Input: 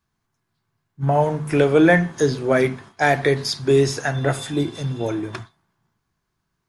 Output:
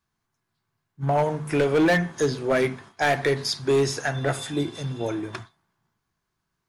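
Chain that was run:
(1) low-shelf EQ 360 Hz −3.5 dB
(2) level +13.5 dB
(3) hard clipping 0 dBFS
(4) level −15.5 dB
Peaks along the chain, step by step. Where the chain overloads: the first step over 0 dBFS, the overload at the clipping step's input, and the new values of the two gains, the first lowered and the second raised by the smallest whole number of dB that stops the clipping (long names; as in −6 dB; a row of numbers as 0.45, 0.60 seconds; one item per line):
−5.0, +8.5, 0.0, −15.5 dBFS
step 2, 8.5 dB
step 2 +4.5 dB, step 4 −6.5 dB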